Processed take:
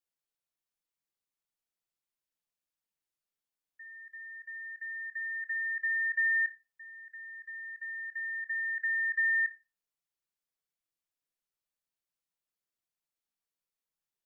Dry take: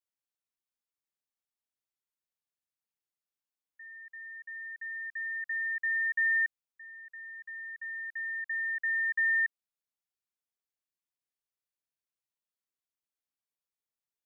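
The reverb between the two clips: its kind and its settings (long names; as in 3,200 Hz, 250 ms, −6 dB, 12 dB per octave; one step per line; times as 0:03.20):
rectangular room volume 160 cubic metres, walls furnished, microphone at 0.71 metres
level −1 dB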